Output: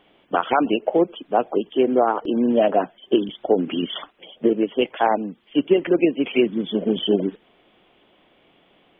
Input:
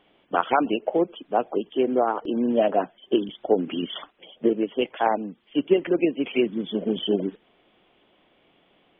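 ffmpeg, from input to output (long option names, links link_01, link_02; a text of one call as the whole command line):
ffmpeg -i in.wav -af "alimiter=level_in=9.5dB:limit=-1dB:release=50:level=0:latency=1,volume=-5.5dB" out.wav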